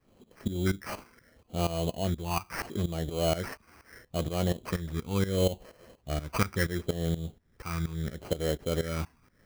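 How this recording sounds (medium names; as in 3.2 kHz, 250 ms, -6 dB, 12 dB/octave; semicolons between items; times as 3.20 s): tremolo saw up 4.2 Hz, depth 85%; phasing stages 12, 0.74 Hz, lowest notch 560–2400 Hz; aliases and images of a low sample rate 3.6 kHz, jitter 0%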